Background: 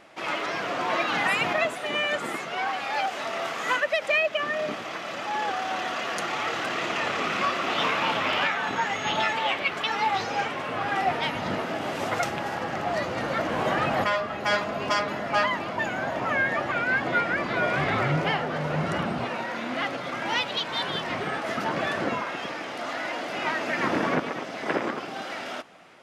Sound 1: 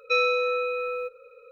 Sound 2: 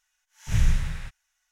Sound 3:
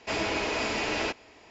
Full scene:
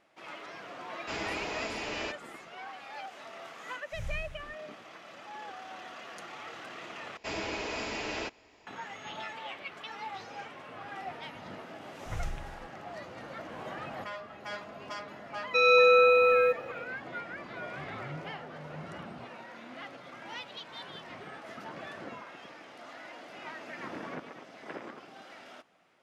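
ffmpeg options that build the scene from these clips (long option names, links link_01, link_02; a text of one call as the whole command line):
ffmpeg -i bed.wav -i cue0.wav -i cue1.wav -i cue2.wav -filter_complex "[3:a]asplit=2[link_01][link_02];[2:a]asplit=2[link_03][link_04];[0:a]volume=-15.5dB[link_05];[link_02]acompressor=mode=upward:threshold=-56dB:ratio=2.5:attack=3.2:release=140:knee=2.83:detection=peak[link_06];[1:a]dynaudnorm=framelen=170:gausssize=3:maxgain=11.5dB[link_07];[link_05]asplit=2[link_08][link_09];[link_08]atrim=end=7.174[link_10];[link_06]atrim=end=1.5,asetpts=PTS-STARTPTS,volume=-6.5dB[link_11];[link_09]atrim=start=8.666[link_12];[link_01]atrim=end=1.5,asetpts=PTS-STARTPTS,volume=-7.5dB,afade=type=in:duration=0.004:curve=hsin,afade=type=out:start_time=1.496:duration=0.004:curve=hsin,adelay=1000[link_13];[link_03]atrim=end=1.51,asetpts=PTS-STARTPTS,volume=-17.5dB,afade=type=in:duration=0.004:curve=hsin,afade=type=out:start_time=1.506:duration=0.004:curve=hsin,adelay=152145S[link_14];[link_04]atrim=end=1.51,asetpts=PTS-STARTPTS,volume=-15.5dB,afade=type=in:duration=0.004:curve=hsin,afade=type=out:start_time=1.506:duration=0.004:curve=hsin,adelay=11580[link_15];[link_07]atrim=end=1.51,asetpts=PTS-STARTPTS,volume=-4dB,afade=type=in:duration=0.004:curve=hsin,afade=type=out:start_time=1.506:duration=0.004:curve=hsin,adelay=15440[link_16];[link_10][link_11]acrossfade=duration=0.004:curve1=hsin:curve2=hsin[link_17];[link_17][link_12]acrossfade=duration=0.004:curve1=hsin:curve2=hsin[link_18];[link_18][link_13][link_14][link_15][link_16]amix=inputs=5:normalize=0" out.wav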